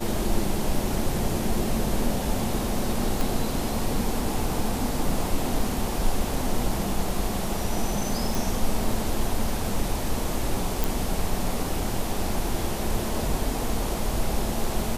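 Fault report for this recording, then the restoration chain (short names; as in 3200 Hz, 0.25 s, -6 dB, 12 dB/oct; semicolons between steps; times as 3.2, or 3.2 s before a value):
3.21 pop
8.35 pop
10.84 pop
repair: de-click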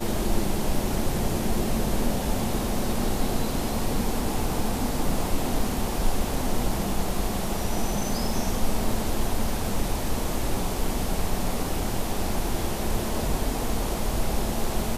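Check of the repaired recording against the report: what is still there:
none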